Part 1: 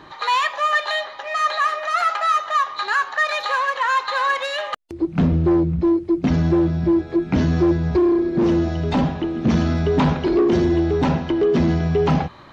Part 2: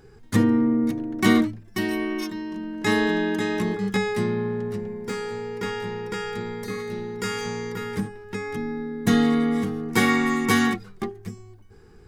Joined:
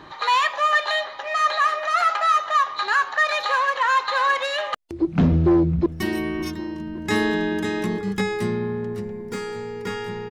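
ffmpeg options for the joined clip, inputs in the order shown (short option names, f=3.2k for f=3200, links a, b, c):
-filter_complex "[0:a]apad=whole_dur=10.3,atrim=end=10.3,atrim=end=5.862[a];[1:a]atrim=start=1.618:end=6.06[b];[a][b]acrossfade=d=0.004:c1=hsin:c2=hsin,asplit=2[c][d];[d]afade=t=in:st=5.26:d=0.01,afade=t=out:st=5.86:d=0.01,aecho=0:1:560|1120|1680|2240|2800|3360|3920|4480:0.158489|0.110943|0.0776598|0.0543618|0.0380533|0.0266373|0.0186461|0.0130523[e];[c][e]amix=inputs=2:normalize=0"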